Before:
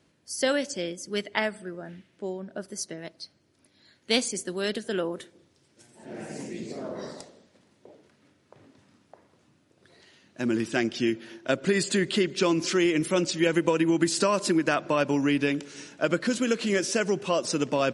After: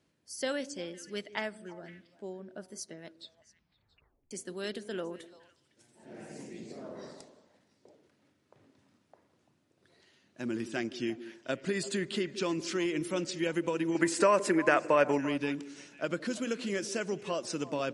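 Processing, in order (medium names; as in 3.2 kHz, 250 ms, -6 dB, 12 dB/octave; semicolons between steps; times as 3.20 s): 3.07 s: tape stop 1.24 s; 13.95–15.18 s: graphic EQ 500/1000/2000/4000/8000 Hz +9/+5/+11/-6/+4 dB; repeats whose band climbs or falls 170 ms, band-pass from 310 Hz, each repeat 1.4 oct, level -11 dB; trim -8.5 dB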